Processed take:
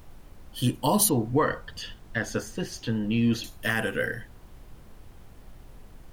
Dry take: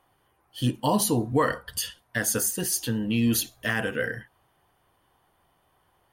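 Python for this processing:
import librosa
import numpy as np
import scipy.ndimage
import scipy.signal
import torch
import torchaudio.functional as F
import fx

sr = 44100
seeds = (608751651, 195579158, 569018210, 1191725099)

y = fx.air_absorb(x, sr, metres=190.0, at=(1.09, 3.44))
y = fx.dmg_noise_colour(y, sr, seeds[0], colour='brown', level_db=-45.0)
y = fx.high_shelf(y, sr, hz=8500.0, db=7.0)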